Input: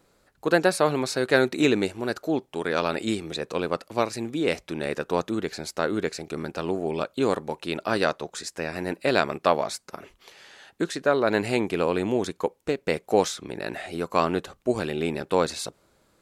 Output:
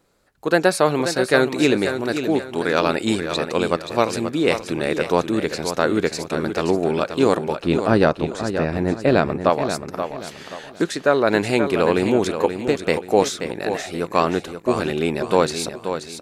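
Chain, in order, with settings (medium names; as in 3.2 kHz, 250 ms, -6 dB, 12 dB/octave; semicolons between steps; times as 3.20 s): 7.60–9.50 s: tilt EQ -3 dB/octave; level rider gain up to 11.5 dB; on a send: feedback delay 530 ms, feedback 33%, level -8.5 dB; on the sum: trim -1 dB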